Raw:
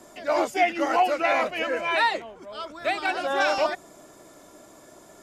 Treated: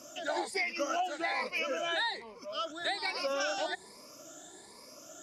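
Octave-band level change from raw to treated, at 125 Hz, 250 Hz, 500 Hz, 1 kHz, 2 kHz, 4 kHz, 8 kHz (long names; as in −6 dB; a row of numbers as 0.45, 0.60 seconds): can't be measured, −10.0 dB, −10.0 dB, −11.5 dB, −8.0 dB, −2.5 dB, −0.5 dB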